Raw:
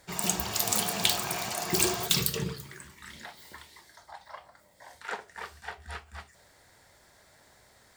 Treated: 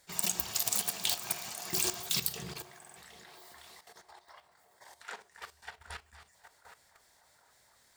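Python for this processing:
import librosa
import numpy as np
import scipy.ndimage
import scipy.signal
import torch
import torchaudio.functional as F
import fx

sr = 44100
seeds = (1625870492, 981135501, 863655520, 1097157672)

p1 = fx.high_shelf(x, sr, hz=2400.0, db=9.0)
p2 = fx.hum_notches(p1, sr, base_hz=50, count=9)
p3 = p2 + fx.echo_banded(p2, sr, ms=766, feedback_pct=60, hz=800.0, wet_db=-9.0, dry=0)
p4 = fx.level_steps(p3, sr, step_db=12)
p5 = fx.buffer_glitch(p4, sr, at_s=(2.78,), block=2048, repeats=3)
y = p5 * librosa.db_to_amplitude(-6.0)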